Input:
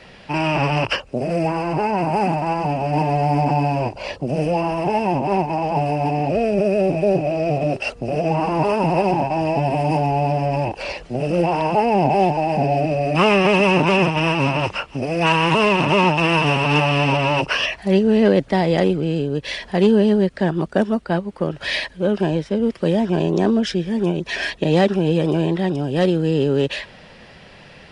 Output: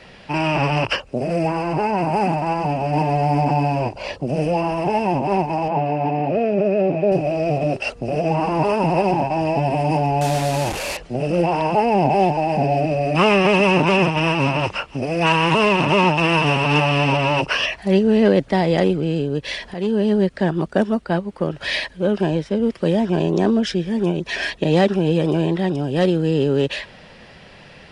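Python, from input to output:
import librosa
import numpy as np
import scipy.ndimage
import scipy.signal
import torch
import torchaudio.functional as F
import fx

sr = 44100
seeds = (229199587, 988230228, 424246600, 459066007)

y = fx.bandpass_edges(x, sr, low_hz=130.0, high_hz=2800.0, at=(5.68, 7.12))
y = fx.delta_mod(y, sr, bps=64000, step_db=-20.5, at=(10.21, 10.97))
y = fx.edit(y, sr, fx.fade_in_from(start_s=19.74, length_s=0.48, floor_db=-12.0), tone=tone)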